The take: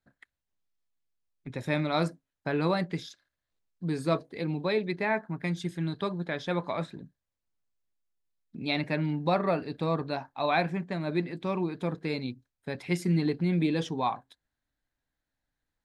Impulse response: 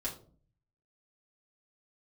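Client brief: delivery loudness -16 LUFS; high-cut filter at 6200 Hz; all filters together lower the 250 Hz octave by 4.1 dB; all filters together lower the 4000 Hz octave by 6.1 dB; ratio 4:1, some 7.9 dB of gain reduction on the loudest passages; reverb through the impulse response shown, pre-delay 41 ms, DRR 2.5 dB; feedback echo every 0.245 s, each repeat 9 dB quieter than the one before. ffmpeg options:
-filter_complex "[0:a]lowpass=6.2k,equalizer=f=250:t=o:g=-7,equalizer=f=4k:t=o:g=-6,acompressor=threshold=-32dB:ratio=4,aecho=1:1:245|490|735|980:0.355|0.124|0.0435|0.0152,asplit=2[a][b];[1:a]atrim=start_sample=2205,adelay=41[c];[b][c]afir=irnorm=-1:irlink=0,volume=-4dB[d];[a][d]amix=inputs=2:normalize=0,volume=18.5dB"

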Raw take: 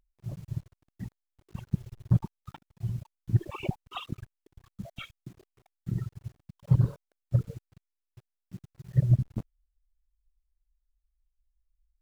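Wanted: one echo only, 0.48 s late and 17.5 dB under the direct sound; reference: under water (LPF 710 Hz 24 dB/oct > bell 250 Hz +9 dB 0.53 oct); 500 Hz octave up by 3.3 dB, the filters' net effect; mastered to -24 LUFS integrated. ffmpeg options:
-af "lowpass=f=710:w=0.5412,lowpass=f=710:w=1.3066,equalizer=f=250:t=o:w=0.53:g=9,equalizer=f=500:t=o:g=3.5,aecho=1:1:480:0.133,volume=6.5dB"

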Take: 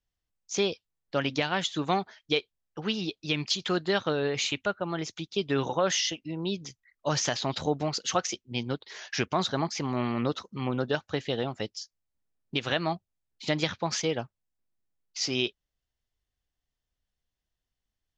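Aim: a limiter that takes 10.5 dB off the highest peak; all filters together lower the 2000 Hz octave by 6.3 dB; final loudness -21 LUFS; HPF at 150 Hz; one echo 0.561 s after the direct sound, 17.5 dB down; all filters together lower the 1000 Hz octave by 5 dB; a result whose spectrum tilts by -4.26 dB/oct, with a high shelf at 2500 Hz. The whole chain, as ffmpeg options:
-af "highpass=150,equalizer=f=1k:t=o:g=-5,equalizer=f=2k:t=o:g=-3.5,highshelf=f=2.5k:g=-6.5,alimiter=limit=-24dB:level=0:latency=1,aecho=1:1:561:0.133,volume=15.5dB"

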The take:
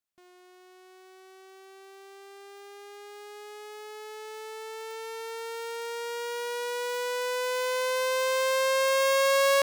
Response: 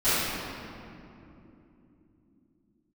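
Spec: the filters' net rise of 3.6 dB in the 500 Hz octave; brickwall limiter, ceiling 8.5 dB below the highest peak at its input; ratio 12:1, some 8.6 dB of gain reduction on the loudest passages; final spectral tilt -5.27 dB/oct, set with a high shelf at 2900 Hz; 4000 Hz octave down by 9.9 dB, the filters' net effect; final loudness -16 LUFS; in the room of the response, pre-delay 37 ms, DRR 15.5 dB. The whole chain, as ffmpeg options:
-filter_complex "[0:a]equalizer=f=500:t=o:g=4,highshelf=f=2.9k:g=-5.5,equalizer=f=4k:t=o:g=-8.5,acompressor=threshold=-28dB:ratio=12,alimiter=level_in=9.5dB:limit=-24dB:level=0:latency=1,volume=-9.5dB,asplit=2[a][b];[1:a]atrim=start_sample=2205,adelay=37[c];[b][c]afir=irnorm=-1:irlink=0,volume=-32.5dB[d];[a][d]amix=inputs=2:normalize=0,volume=23dB"

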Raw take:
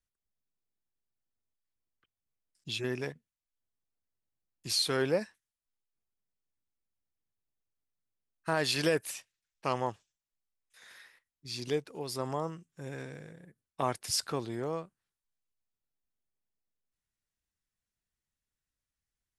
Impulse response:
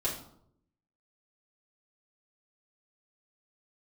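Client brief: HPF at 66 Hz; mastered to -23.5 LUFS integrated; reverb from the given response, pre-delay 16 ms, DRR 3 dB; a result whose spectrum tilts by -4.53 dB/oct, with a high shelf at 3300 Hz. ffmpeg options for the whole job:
-filter_complex "[0:a]highpass=66,highshelf=f=3.3k:g=-4,asplit=2[a][b];[1:a]atrim=start_sample=2205,adelay=16[c];[b][c]afir=irnorm=-1:irlink=0,volume=-8.5dB[d];[a][d]amix=inputs=2:normalize=0,volume=9dB"

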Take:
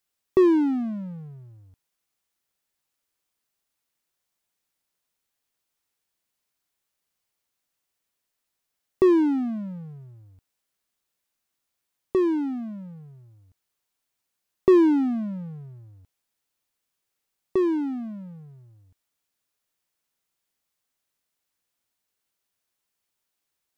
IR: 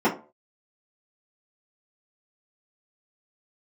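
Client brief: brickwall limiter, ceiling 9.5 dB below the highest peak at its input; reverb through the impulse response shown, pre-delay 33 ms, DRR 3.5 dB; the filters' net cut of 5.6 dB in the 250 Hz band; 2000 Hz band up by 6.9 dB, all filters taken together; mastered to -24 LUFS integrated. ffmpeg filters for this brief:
-filter_complex "[0:a]equalizer=f=250:t=o:g=-9,equalizer=f=2k:t=o:g=8.5,alimiter=limit=-19dB:level=0:latency=1,asplit=2[a][b];[1:a]atrim=start_sample=2205,adelay=33[c];[b][c]afir=irnorm=-1:irlink=0,volume=-20.5dB[d];[a][d]amix=inputs=2:normalize=0,volume=2dB"

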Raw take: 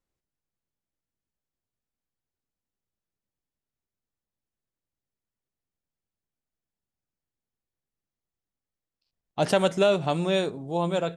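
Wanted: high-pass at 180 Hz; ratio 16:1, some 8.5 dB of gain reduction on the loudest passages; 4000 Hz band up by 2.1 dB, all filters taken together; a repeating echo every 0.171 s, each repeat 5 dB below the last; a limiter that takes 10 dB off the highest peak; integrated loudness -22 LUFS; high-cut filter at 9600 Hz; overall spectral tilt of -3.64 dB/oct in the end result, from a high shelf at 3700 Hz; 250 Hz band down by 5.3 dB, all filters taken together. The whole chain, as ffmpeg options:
-af "highpass=180,lowpass=9.6k,equalizer=f=250:t=o:g=-6,highshelf=f=3.7k:g=-5,equalizer=f=4k:t=o:g=5.5,acompressor=threshold=-25dB:ratio=16,alimiter=limit=-23dB:level=0:latency=1,aecho=1:1:171|342|513|684|855|1026|1197:0.562|0.315|0.176|0.0988|0.0553|0.031|0.0173,volume=11dB"

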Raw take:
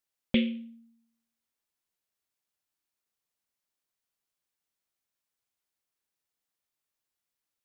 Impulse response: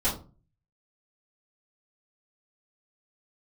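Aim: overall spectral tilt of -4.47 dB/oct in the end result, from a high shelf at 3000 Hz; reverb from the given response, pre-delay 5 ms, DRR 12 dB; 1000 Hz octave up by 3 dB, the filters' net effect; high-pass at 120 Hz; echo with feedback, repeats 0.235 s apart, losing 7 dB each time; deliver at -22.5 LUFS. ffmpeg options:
-filter_complex "[0:a]highpass=120,equalizer=f=1k:t=o:g=4.5,highshelf=f=3k:g=-3.5,aecho=1:1:235|470|705|940|1175:0.447|0.201|0.0905|0.0407|0.0183,asplit=2[a][b];[1:a]atrim=start_sample=2205,adelay=5[c];[b][c]afir=irnorm=-1:irlink=0,volume=-22dB[d];[a][d]amix=inputs=2:normalize=0,volume=7.5dB"

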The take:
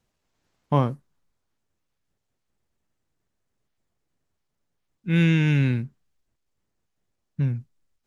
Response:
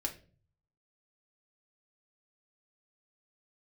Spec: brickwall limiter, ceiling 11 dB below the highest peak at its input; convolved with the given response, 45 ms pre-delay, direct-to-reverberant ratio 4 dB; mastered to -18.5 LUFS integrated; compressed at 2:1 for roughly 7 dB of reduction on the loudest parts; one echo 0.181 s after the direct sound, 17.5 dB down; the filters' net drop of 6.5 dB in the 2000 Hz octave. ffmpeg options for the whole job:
-filter_complex "[0:a]equalizer=f=2k:t=o:g=-9,acompressor=threshold=-29dB:ratio=2,alimiter=level_in=1dB:limit=-24dB:level=0:latency=1,volume=-1dB,aecho=1:1:181:0.133,asplit=2[a][b];[1:a]atrim=start_sample=2205,adelay=45[c];[b][c]afir=irnorm=-1:irlink=0,volume=-5dB[d];[a][d]amix=inputs=2:normalize=0,volume=16dB"

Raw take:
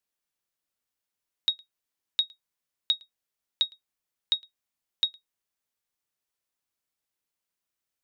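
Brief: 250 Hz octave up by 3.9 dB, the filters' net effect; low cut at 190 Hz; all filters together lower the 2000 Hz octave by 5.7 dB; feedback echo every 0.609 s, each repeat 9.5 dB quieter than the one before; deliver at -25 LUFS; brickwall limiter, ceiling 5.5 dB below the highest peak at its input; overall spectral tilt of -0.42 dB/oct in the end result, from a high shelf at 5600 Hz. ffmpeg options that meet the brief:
-af "highpass=190,equalizer=f=250:t=o:g=7,equalizer=f=2k:t=o:g=-8.5,highshelf=f=5.6k:g=4,alimiter=limit=-19.5dB:level=0:latency=1,aecho=1:1:609|1218|1827|2436:0.335|0.111|0.0365|0.012,volume=11dB"

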